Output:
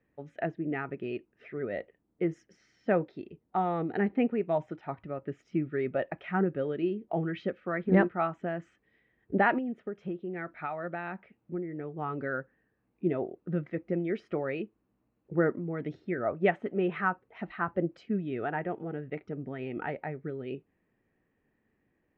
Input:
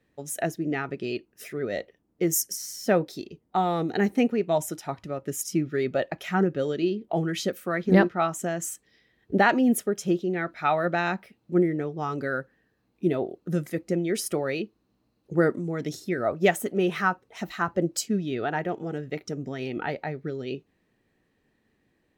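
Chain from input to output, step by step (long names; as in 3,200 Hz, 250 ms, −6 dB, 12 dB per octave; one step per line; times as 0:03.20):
low-pass filter 2,500 Hz 24 dB per octave
0:09.58–0:11.98: downward compressor 4 to 1, threshold −29 dBFS, peak gain reduction 11 dB
level −4.5 dB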